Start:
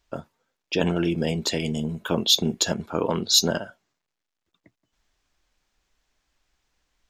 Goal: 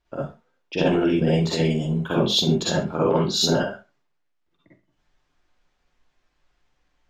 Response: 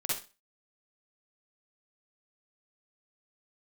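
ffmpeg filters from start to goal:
-filter_complex "[0:a]aemphasis=mode=reproduction:type=75kf[link_01];[1:a]atrim=start_sample=2205,afade=type=out:start_time=0.26:duration=0.01,atrim=end_sample=11907[link_02];[link_01][link_02]afir=irnorm=-1:irlink=0"

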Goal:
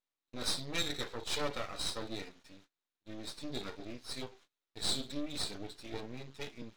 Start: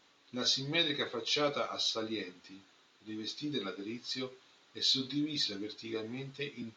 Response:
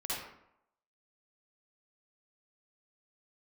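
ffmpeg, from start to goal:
-af "aeval=exprs='max(val(0),0)':channel_layout=same,agate=range=-26dB:threshold=-60dB:ratio=16:detection=peak"

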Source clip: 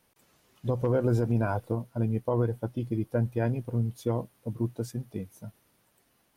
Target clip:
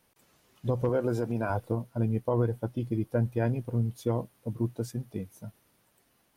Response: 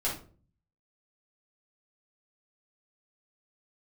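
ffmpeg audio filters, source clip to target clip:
-filter_complex "[0:a]asettb=1/sr,asplit=3[link_01][link_02][link_03];[link_01]atrim=end=0.894[link_04];[link_02]atrim=start=0.89:end=1.5,asetpts=PTS-STARTPTS,afade=type=in:duration=0.004:curve=qsin,afade=type=out:start_time=0.606:duration=0.004:curve=qsin,highpass=frequency=260:poles=1[link_05];[link_03]atrim=start=1.496[link_06];[link_04][link_05]acrossfade=duration=0.004:curve1=hsin:curve2=qsin[link_07];[link_07][link_06]acrossfade=duration=0.004:curve1=qsin:curve2=hsin"

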